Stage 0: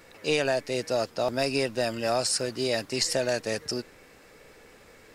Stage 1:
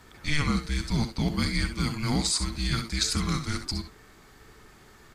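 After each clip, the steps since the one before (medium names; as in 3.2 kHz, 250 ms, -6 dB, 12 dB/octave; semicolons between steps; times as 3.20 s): early reflections 64 ms -11 dB, 74 ms -14.5 dB; frequency shift -450 Hz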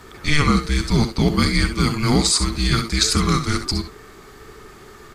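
small resonant body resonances 400/1200 Hz, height 8 dB, ringing for 30 ms; trim +8.5 dB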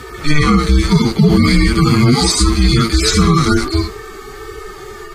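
harmonic-percussive separation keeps harmonic; loudness maximiser +14.5 dB; trim -1 dB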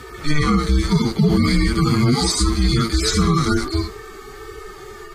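dynamic bell 2.6 kHz, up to -6 dB, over -40 dBFS, Q 4.6; trim -5.5 dB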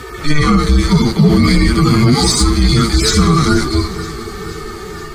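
in parallel at -5 dB: saturation -18 dBFS, distortion -10 dB; on the sum: echo whose repeats swap between lows and highs 239 ms, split 1.1 kHz, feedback 80%, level -14 dB; trim +3.5 dB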